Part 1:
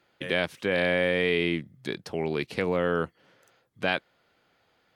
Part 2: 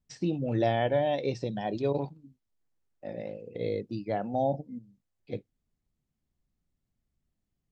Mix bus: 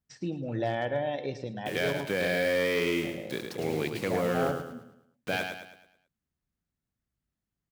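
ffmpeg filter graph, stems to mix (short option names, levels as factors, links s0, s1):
-filter_complex "[0:a]asoftclip=type=hard:threshold=0.15,acrusher=bits=6:mix=0:aa=0.000001,adelay=1450,volume=0.708,asplit=2[s0][s1];[s1]volume=0.501[s2];[1:a]equalizer=f=1500:t=o:w=0.87:g=6,volume=0.596,asplit=2[s3][s4];[s4]volume=0.224[s5];[s2][s5]amix=inputs=2:normalize=0,aecho=0:1:108|216|324|432|540|648:1|0.42|0.176|0.0741|0.0311|0.0131[s6];[s0][s3][s6]amix=inputs=3:normalize=0,highpass=42,asoftclip=type=hard:threshold=0.1"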